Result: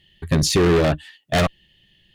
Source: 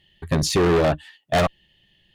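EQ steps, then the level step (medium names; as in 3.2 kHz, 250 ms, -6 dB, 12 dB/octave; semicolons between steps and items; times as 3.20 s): peaking EQ 810 Hz -6 dB 1.5 oct; +3.5 dB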